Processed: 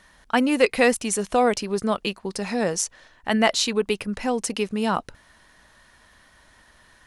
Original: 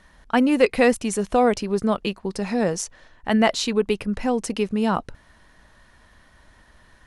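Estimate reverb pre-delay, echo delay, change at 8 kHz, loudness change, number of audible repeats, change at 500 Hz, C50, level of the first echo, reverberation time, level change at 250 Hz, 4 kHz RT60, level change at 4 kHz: none, none, +4.5 dB, -1.0 dB, none, -1.5 dB, none, none, none, -3.0 dB, none, +3.0 dB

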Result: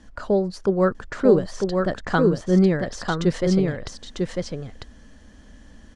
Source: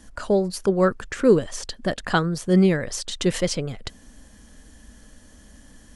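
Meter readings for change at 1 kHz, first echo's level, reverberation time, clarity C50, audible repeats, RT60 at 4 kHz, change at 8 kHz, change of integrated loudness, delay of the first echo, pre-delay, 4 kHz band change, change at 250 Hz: +0.5 dB, -3.5 dB, none, none, 1, none, -7.5 dB, +0.5 dB, 0.948 s, none, -4.5 dB, +1.5 dB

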